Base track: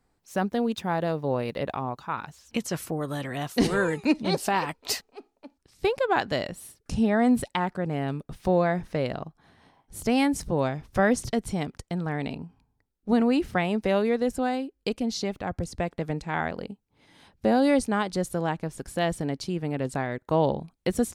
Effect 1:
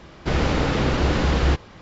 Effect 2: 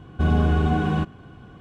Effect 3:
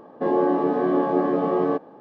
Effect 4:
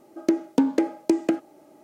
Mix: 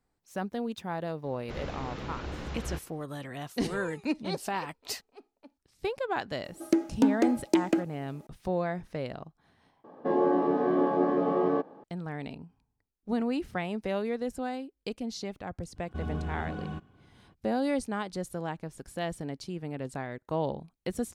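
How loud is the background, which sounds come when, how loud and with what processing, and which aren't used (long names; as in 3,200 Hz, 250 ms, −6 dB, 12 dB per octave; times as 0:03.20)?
base track −7.5 dB
0:01.23: mix in 1 −17.5 dB + notch filter 4,700 Hz, Q 29
0:06.44: mix in 4 −1 dB + parametric band 570 Hz −3 dB 2.4 octaves
0:09.84: overwrite with 3 −4.5 dB
0:15.75: mix in 2 −15 dB, fades 0.02 s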